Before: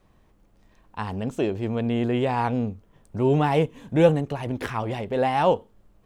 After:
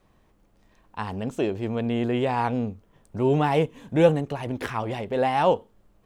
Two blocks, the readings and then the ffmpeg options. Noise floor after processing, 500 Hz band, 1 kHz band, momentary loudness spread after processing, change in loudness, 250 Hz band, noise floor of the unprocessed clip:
−62 dBFS, −0.5 dB, 0.0 dB, 11 LU, −0.5 dB, −1.0 dB, −60 dBFS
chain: -af "lowshelf=frequency=170:gain=-3.5"

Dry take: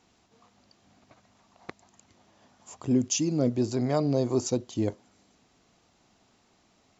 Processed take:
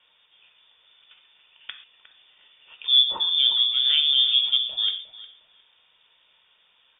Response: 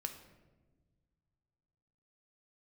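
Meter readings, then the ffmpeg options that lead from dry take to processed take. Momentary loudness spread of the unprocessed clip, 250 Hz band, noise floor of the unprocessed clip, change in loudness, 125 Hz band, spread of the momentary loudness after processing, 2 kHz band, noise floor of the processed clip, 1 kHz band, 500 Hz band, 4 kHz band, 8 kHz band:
6 LU, below −30 dB, −66 dBFS, +9.0 dB, below −35 dB, 8 LU, +7.0 dB, −63 dBFS, −4.0 dB, below −20 dB, +26.0 dB, can't be measured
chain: -filter_complex "[1:a]atrim=start_sample=2205,atrim=end_sample=6174[link_01];[0:a][link_01]afir=irnorm=-1:irlink=0,lowpass=frequency=3100:width_type=q:width=0.5098,lowpass=frequency=3100:width_type=q:width=0.6013,lowpass=frequency=3100:width_type=q:width=0.9,lowpass=frequency=3100:width_type=q:width=2.563,afreqshift=-3700,asplit=2[link_02][link_03];[link_03]adelay=358,lowpass=frequency=1600:poles=1,volume=-11.5dB,asplit=2[link_04][link_05];[link_05]adelay=358,lowpass=frequency=1600:poles=1,volume=0.3,asplit=2[link_06][link_07];[link_07]adelay=358,lowpass=frequency=1600:poles=1,volume=0.3[link_08];[link_02][link_04][link_06][link_08]amix=inputs=4:normalize=0,volume=6dB"

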